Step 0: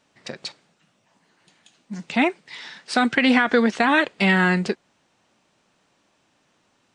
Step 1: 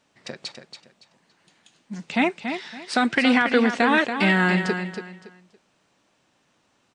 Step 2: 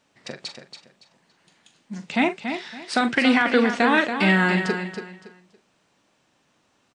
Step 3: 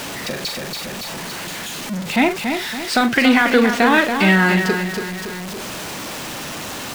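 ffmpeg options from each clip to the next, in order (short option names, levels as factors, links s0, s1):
-af "aecho=1:1:282|564|846:0.398|0.104|0.0269,volume=0.841"
-filter_complex "[0:a]asplit=2[s0][s1];[s1]adelay=42,volume=0.282[s2];[s0][s2]amix=inputs=2:normalize=0"
-af "aeval=exprs='val(0)+0.5*0.0447*sgn(val(0))':c=same,volume=1.5"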